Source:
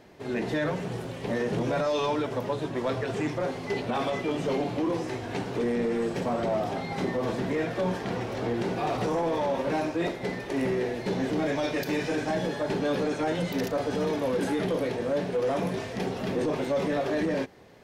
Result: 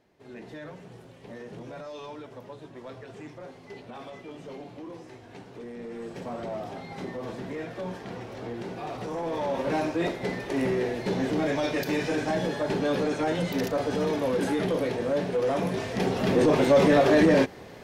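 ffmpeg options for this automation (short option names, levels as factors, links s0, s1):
-af "volume=2.66,afade=t=in:st=5.73:d=0.61:silence=0.473151,afade=t=in:st=9.06:d=0.71:silence=0.398107,afade=t=in:st=15.7:d=1.06:silence=0.421697"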